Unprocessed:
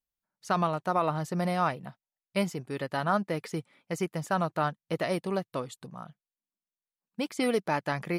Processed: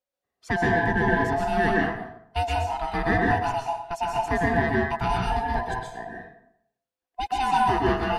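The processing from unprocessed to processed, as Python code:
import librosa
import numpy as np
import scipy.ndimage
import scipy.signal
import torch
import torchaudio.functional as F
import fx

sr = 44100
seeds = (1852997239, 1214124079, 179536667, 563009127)

p1 = fx.band_swap(x, sr, width_hz=500)
p2 = fx.lowpass(p1, sr, hz=3800.0, slope=6)
p3 = 10.0 ** (-26.0 / 20.0) * np.tanh(p2 / 10.0 ** (-26.0 / 20.0))
p4 = p2 + F.gain(torch.from_numpy(p3), -7.5).numpy()
y = fx.rev_plate(p4, sr, seeds[0], rt60_s=0.72, hf_ratio=0.65, predelay_ms=110, drr_db=-2.5)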